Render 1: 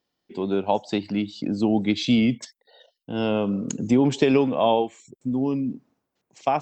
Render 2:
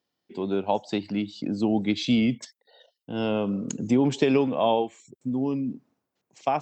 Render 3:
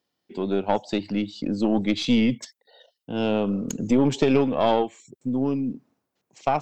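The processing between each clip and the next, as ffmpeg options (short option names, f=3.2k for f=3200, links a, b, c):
-af "highpass=61,volume=-2.5dB"
-af "aeval=exprs='(tanh(5.01*val(0)+0.45)-tanh(0.45))/5.01':c=same,volume=4dB"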